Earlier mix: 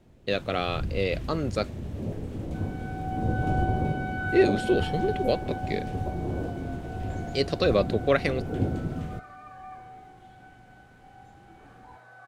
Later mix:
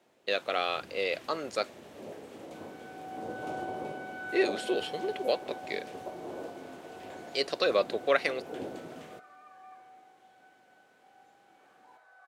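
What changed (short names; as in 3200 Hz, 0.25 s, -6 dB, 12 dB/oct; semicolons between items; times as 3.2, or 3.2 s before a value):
second sound -7.5 dB; master: add HPF 530 Hz 12 dB/oct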